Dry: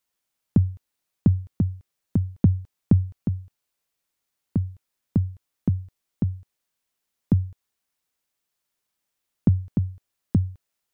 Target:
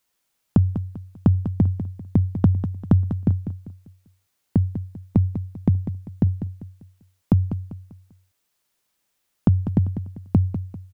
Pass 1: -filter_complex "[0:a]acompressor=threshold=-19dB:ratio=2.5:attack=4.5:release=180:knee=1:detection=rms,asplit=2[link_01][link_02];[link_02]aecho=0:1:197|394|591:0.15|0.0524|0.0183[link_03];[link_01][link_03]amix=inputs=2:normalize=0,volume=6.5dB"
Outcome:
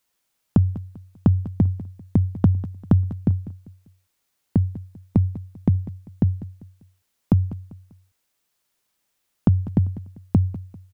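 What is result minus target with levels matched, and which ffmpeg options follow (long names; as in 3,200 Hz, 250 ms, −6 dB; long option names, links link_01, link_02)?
echo-to-direct −6 dB
-filter_complex "[0:a]acompressor=threshold=-19dB:ratio=2.5:attack=4.5:release=180:knee=1:detection=rms,asplit=2[link_01][link_02];[link_02]aecho=0:1:197|394|591|788:0.299|0.104|0.0366|0.0128[link_03];[link_01][link_03]amix=inputs=2:normalize=0,volume=6.5dB"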